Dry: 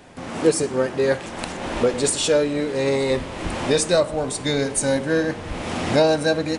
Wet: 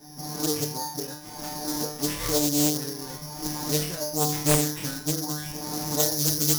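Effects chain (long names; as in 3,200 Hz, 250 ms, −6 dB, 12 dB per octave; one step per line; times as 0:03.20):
0:05.19–0:05.49: sound drawn into the spectrogram rise 610–3,000 Hz −32 dBFS
downward compressor 3 to 1, threshold −23 dBFS, peak gain reduction 9 dB
reverb reduction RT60 0.97 s
tuned comb filter 150 Hz, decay 0.62 s, harmonics all, mix 100%
convolution reverb RT60 0.70 s, pre-delay 3 ms, DRR 15.5 dB
bad sample-rate conversion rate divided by 8×, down none, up zero stuff
high-shelf EQ 2,600 Hz −9.5 dB, from 0:06.00 −3 dB
highs frequency-modulated by the lows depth 0.85 ms
level +2 dB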